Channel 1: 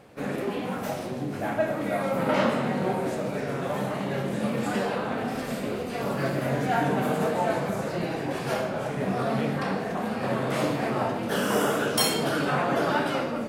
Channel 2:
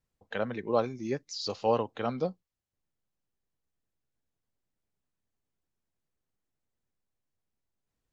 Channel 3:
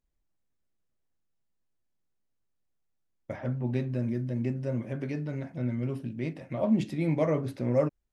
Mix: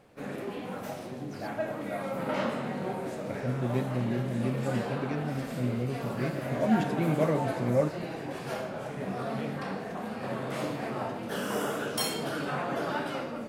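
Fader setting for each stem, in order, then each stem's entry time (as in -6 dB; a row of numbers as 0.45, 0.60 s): -7.0, -19.0, -0.5 dB; 0.00, 0.00, 0.00 s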